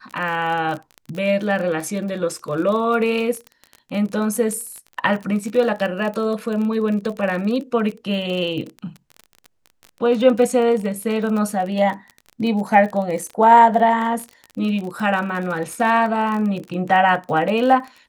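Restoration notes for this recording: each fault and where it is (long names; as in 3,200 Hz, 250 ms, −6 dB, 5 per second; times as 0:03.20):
surface crackle 33 per second −26 dBFS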